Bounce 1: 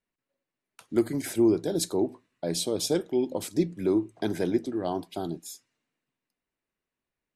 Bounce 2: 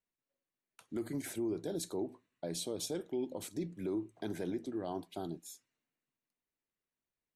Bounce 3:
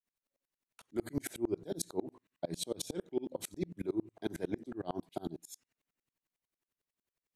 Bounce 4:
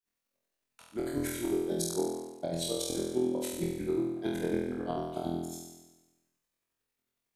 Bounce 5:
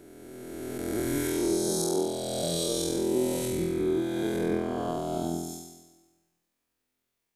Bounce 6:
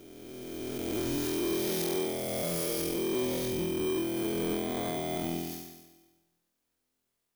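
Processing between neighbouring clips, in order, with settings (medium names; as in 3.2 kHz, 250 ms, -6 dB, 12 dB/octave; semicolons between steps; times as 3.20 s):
band-stop 5 kHz, Q 11; peak limiter -20.5 dBFS, peak gain reduction 8.5 dB; trim -8 dB
sawtooth tremolo in dB swelling 11 Hz, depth 33 dB; trim +9 dB
flutter echo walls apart 4.1 m, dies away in 1.1 s
reverse spectral sustain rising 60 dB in 2.60 s; on a send at -20 dB: reverberation RT60 1.7 s, pre-delay 9 ms
bit-reversed sample order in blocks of 16 samples; saturation -26 dBFS, distortion -13 dB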